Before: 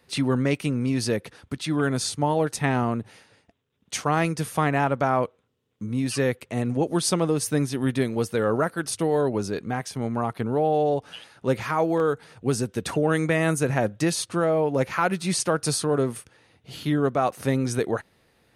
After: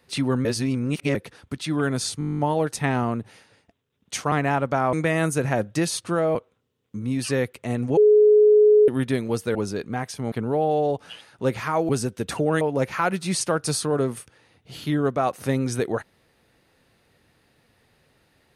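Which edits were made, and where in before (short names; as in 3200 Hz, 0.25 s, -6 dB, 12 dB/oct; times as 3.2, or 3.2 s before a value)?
0.45–1.15 reverse
2.19 stutter 0.02 s, 11 plays
4.12–4.61 cut
6.84–7.75 bleep 422 Hz -11 dBFS
8.42–9.32 cut
10.09–10.35 cut
11.92–12.46 cut
13.18–14.6 move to 5.22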